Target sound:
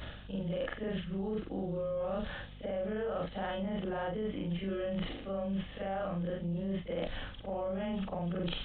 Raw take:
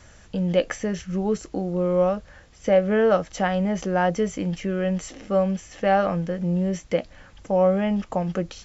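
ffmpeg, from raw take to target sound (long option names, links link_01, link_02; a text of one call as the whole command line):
ffmpeg -i in.wav -filter_complex "[0:a]afftfilt=real='re':imag='-im':win_size=4096:overlap=0.75,acrossover=split=2800[link_01][link_02];[link_02]acompressor=threshold=-58dB:ratio=4:attack=1:release=60[link_03];[link_01][link_03]amix=inputs=2:normalize=0,alimiter=limit=-23.5dB:level=0:latency=1:release=97,areverse,acompressor=threshold=-44dB:ratio=12,areverse,aeval=exprs='0.0211*(cos(1*acos(clip(val(0)/0.0211,-1,1)))-cos(1*PI/2))+0.0015*(cos(2*acos(clip(val(0)/0.0211,-1,1)))-cos(2*PI/2))+0.000168*(cos(7*acos(clip(val(0)/0.0211,-1,1)))-cos(7*PI/2))':channel_layout=same,bandreject=frequency=45.73:width_type=h:width=4,bandreject=frequency=91.46:width_type=h:width=4,bandreject=frequency=137.19:width_type=h:width=4,bandreject=frequency=182.92:width_type=h:width=4,bandreject=frequency=228.65:width_type=h:width=4,aeval=exprs='val(0)+0.000891*(sin(2*PI*50*n/s)+sin(2*PI*2*50*n/s)/2+sin(2*PI*3*50*n/s)/3+sin(2*PI*4*50*n/s)/4+sin(2*PI*5*50*n/s)/5)':channel_layout=same,asplit=2[link_04][link_05];[link_05]aeval=exprs='0.0237*sin(PI/2*1.78*val(0)/0.0237)':channel_layout=same,volume=-6.5dB[link_06];[link_04][link_06]amix=inputs=2:normalize=0,aexciter=amount=2.6:drive=7.7:freq=3100,aresample=8000,aresample=44100,volume=4.5dB" out.wav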